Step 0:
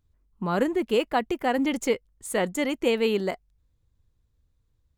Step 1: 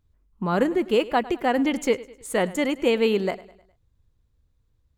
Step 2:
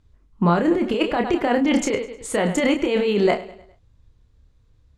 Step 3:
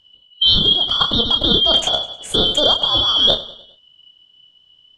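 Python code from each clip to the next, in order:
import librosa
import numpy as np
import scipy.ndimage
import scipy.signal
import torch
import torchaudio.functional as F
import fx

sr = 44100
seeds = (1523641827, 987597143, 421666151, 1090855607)

y1 = fx.high_shelf(x, sr, hz=5500.0, db=-4.5)
y1 = fx.echo_feedback(y1, sr, ms=103, feedback_pct=46, wet_db=-19)
y1 = y1 * 10.0 ** (2.5 / 20.0)
y2 = scipy.signal.sosfilt(scipy.signal.butter(2, 7200.0, 'lowpass', fs=sr, output='sos'), y1)
y2 = fx.over_compress(y2, sr, threshold_db=-25.0, ratio=-1.0)
y2 = fx.doubler(y2, sr, ms=29.0, db=-6.0)
y2 = y2 * 10.0 ** (5.5 / 20.0)
y3 = fx.band_shuffle(y2, sr, order='2413')
y3 = fx.tilt_eq(y3, sr, slope=-2.5)
y3 = y3 * 10.0 ** (7.5 / 20.0)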